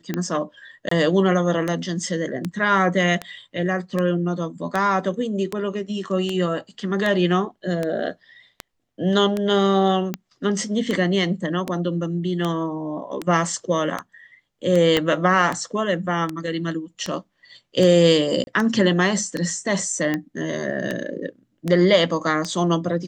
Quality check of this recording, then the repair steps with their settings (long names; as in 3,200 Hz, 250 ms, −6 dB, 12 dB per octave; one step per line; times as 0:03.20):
scratch tick 78 rpm −11 dBFS
0:00.89–0:00.91: drop-out 24 ms
0:14.97: click −6 dBFS
0:18.44–0:18.47: drop-out 31 ms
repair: click removal
repair the gap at 0:00.89, 24 ms
repair the gap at 0:18.44, 31 ms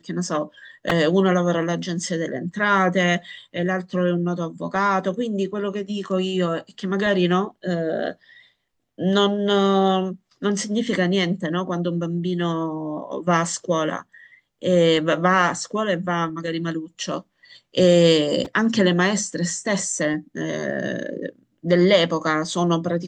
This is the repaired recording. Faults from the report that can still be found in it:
0:14.97: click